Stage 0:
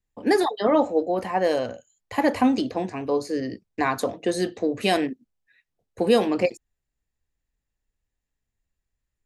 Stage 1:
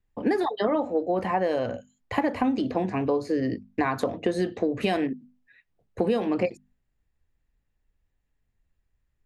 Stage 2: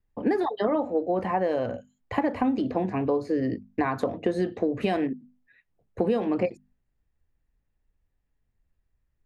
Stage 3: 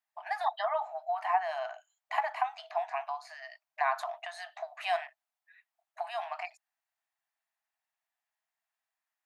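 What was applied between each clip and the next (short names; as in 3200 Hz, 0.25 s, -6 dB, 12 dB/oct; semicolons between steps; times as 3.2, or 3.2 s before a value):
tone controls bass +4 dB, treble -11 dB; notches 50/100/150/200/250 Hz; compressor 6:1, threshold -26 dBFS, peak gain reduction 12.5 dB; gain +4.5 dB
high shelf 2600 Hz -8 dB
brick-wall FIR high-pass 620 Hz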